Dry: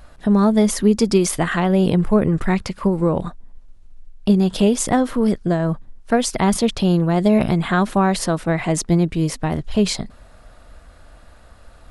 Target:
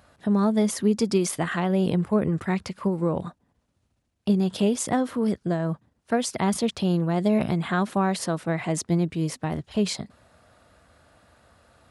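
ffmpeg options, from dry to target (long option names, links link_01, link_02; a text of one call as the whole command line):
ffmpeg -i in.wav -af "highpass=frequency=78:width=0.5412,highpass=frequency=78:width=1.3066,volume=-6.5dB" out.wav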